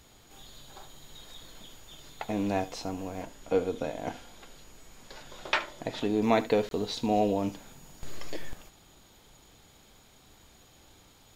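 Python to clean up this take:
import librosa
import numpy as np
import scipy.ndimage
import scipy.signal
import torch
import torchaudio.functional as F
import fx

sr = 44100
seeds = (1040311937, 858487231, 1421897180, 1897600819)

y = fx.fix_interpolate(x, sr, at_s=(6.69,), length_ms=22.0)
y = fx.fix_echo_inverse(y, sr, delay_ms=74, level_db=-17.0)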